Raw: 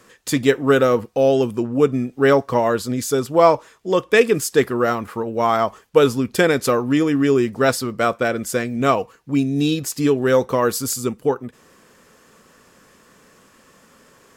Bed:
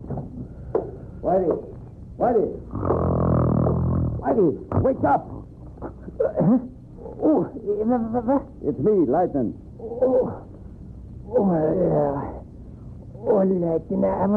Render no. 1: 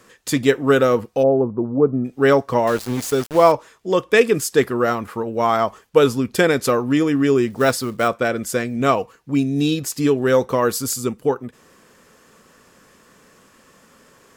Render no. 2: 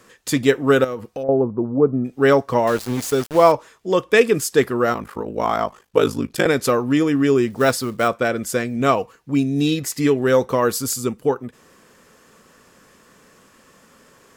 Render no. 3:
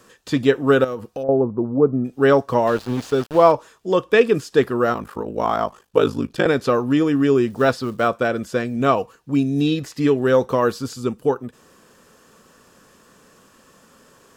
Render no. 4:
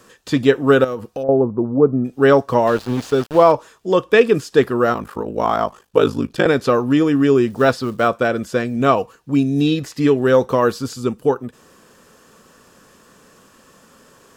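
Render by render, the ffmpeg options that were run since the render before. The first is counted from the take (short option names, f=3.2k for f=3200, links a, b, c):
-filter_complex "[0:a]asplit=3[a][b][c];[a]afade=t=out:st=1.22:d=0.02[d];[b]lowpass=f=1.1k:w=0.5412,lowpass=f=1.1k:w=1.3066,afade=t=in:st=1.22:d=0.02,afade=t=out:st=2.04:d=0.02[e];[c]afade=t=in:st=2.04:d=0.02[f];[d][e][f]amix=inputs=3:normalize=0,asettb=1/sr,asplit=3[g][h][i];[g]atrim=end=2.674[j];[h]atrim=start=2.67:end=3.52,asetpts=PTS-STARTPTS,afade=t=in:d=0.004:c=qsin,afade=t=out:st=0.846:d=0.004:c=qsin,aeval=exprs='val(0)*gte(abs(val(0)),0.0501)':c=same[k];[i]atrim=start=3.516[l];[j][k]acrossfade=d=0.004:c1=hsin:c2=qsin[m];[m][l]acrossfade=d=0.004:c1=qsin:c2=hsin,asettb=1/sr,asplit=3[n][o][p];[n]atrim=end=7.504[q];[o]atrim=start=7.5:end=8.08,asetpts=PTS-STARTPTS,afade=t=in:d=0.004:c=qsin,afade=t=out:st=0.576:d=0.004:c=qsin,acrusher=bits=6:mode=log:mix=0:aa=0.000001[r];[p]atrim=start=8.076[s];[q][r]acrossfade=d=0.004:c1=hsin:c2=qsin[t];[t][s]acrossfade=d=0.004:c1=qsin:c2=hsin"
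-filter_complex "[0:a]asettb=1/sr,asplit=3[a][b][c];[a]atrim=end=0.844[d];[b]atrim=start=0.84:end=1.29,asetpts=PTS-STARTPTS,afade=t=in:d=0.004:c=qsin,afade=t=out:st=0.446:d=0.004:c=qsin,acompressor=threshold=-27dB:ratio=3:attack=3.2:release=140:knee=1:detection=peak[e];[c]atrim=start=1.286[f];[d][e]acrossfade=d=0.004:c1=hsin:c2=qsin[g];[g][f]acrossfade=d=0.004:c1=qsin:c2=hsin,asettb=1/sr,asplit=3[h][i][j];[h]atrim=end=4.934[k];[i]atrim=start=4.93:end=6.46,asetpts=PTS-STARTPTS,afade=t=in:d=0.004:c=qsin,afade=t=out:st=1.526:d=0.004:c=qsin,aeval=exprs='val(0)*sin(2*PI*26*n/s)':c=same[l];[j]atrim=start=6.456[m];[k][l]acrossfade=d=0.004:c1=hsin:c2=qsin[n];[n][m]acrossfade=d=0.004:c1=qsin:c2=hsin,asettb=1/sr,asplit=3[o][p][q];[o]atrim=end=9.664[r];[p]atrim=start=9.66:end=10.22,asetpts=PTS-STARTPTS,afade=t=in:d=0.004:c=qsin,afade=t=out:st=0.556:d=0.004:c=qsin,equalizer=f=2k:t=o:w=0.25:g=10[s];[q]atrim=start=10.216[t];[r][s]acrossfade=d=0.004:c1=hsin:c2=qsin[u];[u][t]acrossfade=d=0.004:c1=qsin:c2=hsin"
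-filter_complex "[0:a]acrossover=split=4500[a][b];[b]acompressor=threshold=-47dB:ratio=4:attack=1:release=60[c];[a][c]amix=inputs=2:normalize=0,equalizer=f=2.1k:w=4.7:g=-7"
-af "volume=2.5dB,alimiter=limit=-1dB:level=0:latency=1"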